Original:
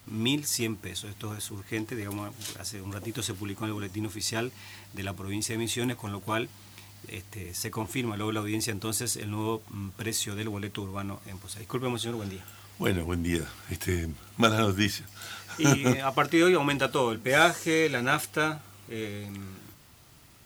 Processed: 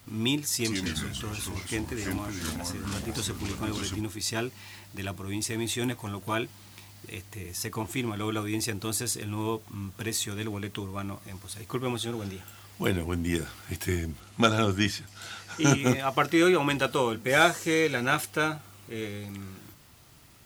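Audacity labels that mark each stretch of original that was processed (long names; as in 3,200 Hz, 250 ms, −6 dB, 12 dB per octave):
0.540000	4.010000	delay with pitch and tempo change per echo 106 ms, each echo −3 semitones, echoes 3
14.200000	15.790000	low-pass filter 10,000 Hz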